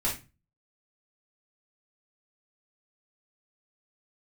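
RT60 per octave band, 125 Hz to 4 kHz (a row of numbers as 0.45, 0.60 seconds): 0.50, 0.40, 0.30, 0.25, 0.30, 0.25 seconds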